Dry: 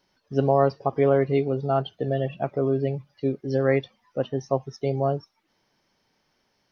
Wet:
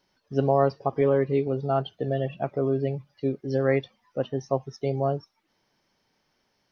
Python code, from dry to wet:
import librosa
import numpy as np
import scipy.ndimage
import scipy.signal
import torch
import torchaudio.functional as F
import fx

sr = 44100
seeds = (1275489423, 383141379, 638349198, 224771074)

y = fx.notch_comb(x, sr, f0_hz=710.0, at=(1.01, 1.47))
y = F.gain(torch.from_numpy(y), -1.5).numpy()